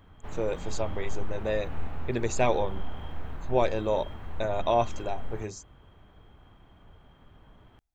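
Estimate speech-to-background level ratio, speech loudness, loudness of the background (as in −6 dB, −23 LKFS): 11.5 dB, −30.5 LKFS, −42.0 LKFS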